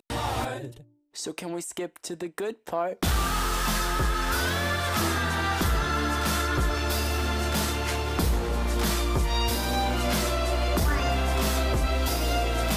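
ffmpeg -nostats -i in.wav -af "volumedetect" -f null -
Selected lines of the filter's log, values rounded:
mean_volume: -26.1 dB
max_volume: -15.7 dB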